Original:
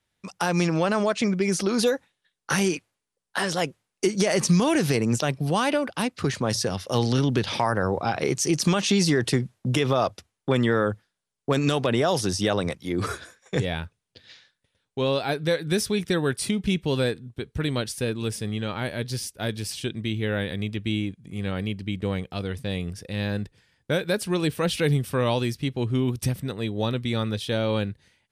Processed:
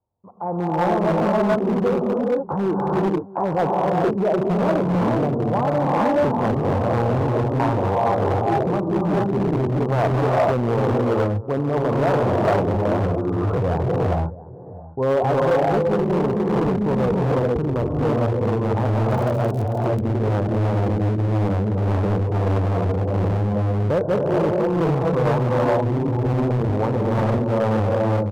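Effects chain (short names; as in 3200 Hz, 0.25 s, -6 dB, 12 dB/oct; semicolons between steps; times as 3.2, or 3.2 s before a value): steep low-pass 1000 Hz 48 dB/oct; in parallel at +2 dB: level quantiser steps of 17 dB; on the sum: non-linear reverb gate 0.48 s rising, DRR -3 dB; transient shaper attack -4 dB, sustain +2 dB; AGC gain up to 11.5 dB; bell 94 Hz +8.5 dB 0.65 oct; on a send: echo 0.666 s -19 dB; 19.09–19.99 on the sum: crackle 78/s -> 29/s -25 dBFS; hard clip -8.5 dBFS, distortion -11 dB; low shelf 480 Hz -10.5 dB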